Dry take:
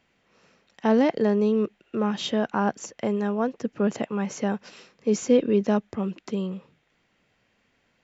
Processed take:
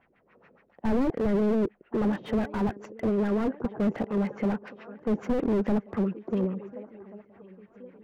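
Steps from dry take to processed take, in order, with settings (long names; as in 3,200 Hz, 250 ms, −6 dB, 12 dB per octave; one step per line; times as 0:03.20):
auto-filter low-pass sine 7.1 Hz 370–2,100 Hz
feedback echo with a long and a short gap by turns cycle 1,432 ms, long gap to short 3 to 1, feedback 41%, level −24 dB
slew-rate limiting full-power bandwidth 25 Hz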